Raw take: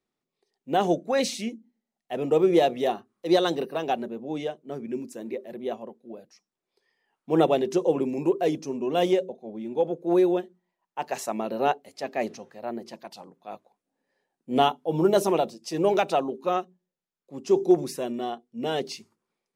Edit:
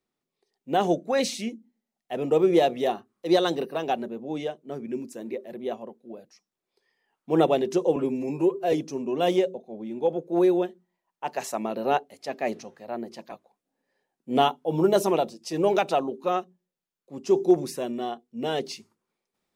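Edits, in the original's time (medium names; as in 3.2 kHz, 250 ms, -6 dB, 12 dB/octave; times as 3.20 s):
7.96–8.47 s: stretch 1.5×
13.06–13.52 s: delete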